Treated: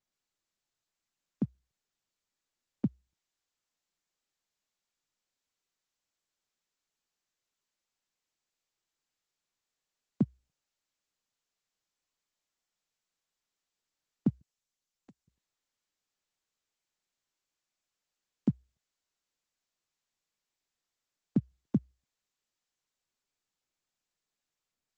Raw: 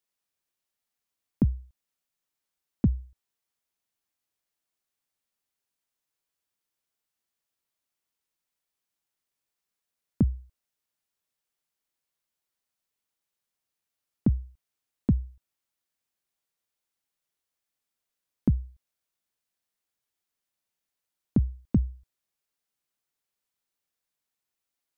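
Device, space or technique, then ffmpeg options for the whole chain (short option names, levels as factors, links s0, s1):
video call: -filter_complex "[0:a]asettb=1/sr,asplit=3[s0][s1][s2];[s0]atrim=end=14.414[s3];[s1]atrim=start=14.41:end=15.28,asetpts=PTS-STARTPTS,afade=t=in:d=0.004:c=qsin,afade=t=out:st=0.866:d=0.004:c=qsin,aderivative[s4];[s2]atrim=start=15.276[s5];[s3][s4]acrossfade=d=0.004:c1=hsin:c2=qsin[s6];[s6][s5]acrossfade=d=0.004:c1=qsin:c2=hsin,highpass=f=140:w=0.5412,highpass=f=140:w=1.3066,dynaudnorm=f=920:g=7:m=1.58,volume=0.447" -ar 48000 -c:a libopus -b:a 12k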